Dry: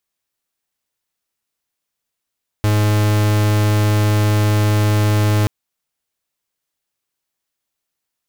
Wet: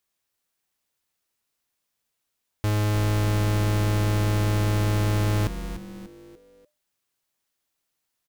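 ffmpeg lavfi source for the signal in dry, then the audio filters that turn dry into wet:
-f lavfi -i "aevalsrc='0.188*(2*lt(mod(105*t,1),0.44)-1)':duration=2.83:sample_rate=44100"
-filter_complex "[0:a]alimiter=limit=-22.5dB:level=0:latency=1,asplit=2[link_01][link_02];[link_02]asplit=4[link_03][link_04][link_05][link_06];[link_03]adelay=294,afreqshift=-150,volume=-10dB[link_07];[link_04]adelay=588,afreqshift=-300,volume=-17.5dB[link_08];[link_05]adelay=882,afreqshift=-450,volume=-25.1dB[link_09];[link_06]adelay=1176,afreqshift=-600,volume=-32.6dB[link_10];[link_07][link_08][link_09][link_10]amix=inputs=4:normalize=0[link_11];[link_01][link_11]amix=inputs=2:normalize=0"

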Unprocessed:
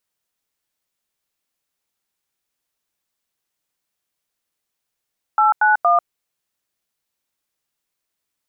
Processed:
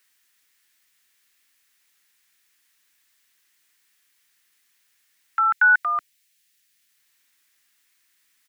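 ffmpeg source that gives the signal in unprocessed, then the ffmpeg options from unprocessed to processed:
-f lavfi -i "aevalsrc='0.2*clip(min(mod(t,0.233),0.143-mod(t,0.233))/0.002,0,1)*(eq(floor(t/0.233),0)*(sin(2*PI*852*mod(t,0.233))+sin(2*PI*1336*mod(t,0.233)))+eq(floor(t/0.233),1)*(sin(2*PI*852*mod(t,0.233))+sin(2*PI*1477*mod(t,0.233)))+eq(floor(t/0.233),2)*(sin(2*PI*697*mod(t,0.233))+sin(2*PI*1209*mod(t,0.233))))':duration=0.699:sample_rate=44100"
-filter_complex "[0:a]firequalizer=gain_entry='entry(280,0);entry(600,-25);entry(1800,13)':delay=0.05:min_phase=1,acrossover=split=680|790|860[link_01][link_02][link_03][link_04];[link_02]acompressor=mode=upward:threshold=-57dB:ratio=2.5[link_05];[link_01][link_05][link_03][link_04]amix=inputs=4:normalize=0"

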